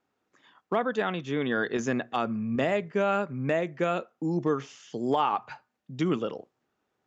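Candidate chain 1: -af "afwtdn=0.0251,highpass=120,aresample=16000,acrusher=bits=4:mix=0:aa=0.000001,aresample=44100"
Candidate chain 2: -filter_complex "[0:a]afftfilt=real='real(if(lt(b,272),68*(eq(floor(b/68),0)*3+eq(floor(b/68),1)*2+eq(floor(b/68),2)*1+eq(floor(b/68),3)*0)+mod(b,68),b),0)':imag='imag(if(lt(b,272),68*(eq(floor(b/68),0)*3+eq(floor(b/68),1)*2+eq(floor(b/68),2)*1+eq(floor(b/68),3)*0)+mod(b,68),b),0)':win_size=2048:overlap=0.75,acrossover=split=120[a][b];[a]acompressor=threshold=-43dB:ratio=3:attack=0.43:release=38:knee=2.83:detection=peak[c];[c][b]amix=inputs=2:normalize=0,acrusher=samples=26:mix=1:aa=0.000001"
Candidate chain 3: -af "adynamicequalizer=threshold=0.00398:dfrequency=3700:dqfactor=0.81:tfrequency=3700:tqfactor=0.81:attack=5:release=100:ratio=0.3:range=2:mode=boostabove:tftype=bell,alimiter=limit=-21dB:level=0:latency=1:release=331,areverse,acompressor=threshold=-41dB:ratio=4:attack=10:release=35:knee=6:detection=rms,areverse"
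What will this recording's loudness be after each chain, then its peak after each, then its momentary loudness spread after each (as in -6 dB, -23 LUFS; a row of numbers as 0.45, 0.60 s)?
-28.5, -29.5, -42.5 LUFS; -13.0, -14.5, -28.0 dBFS; 6, 7, 9 LU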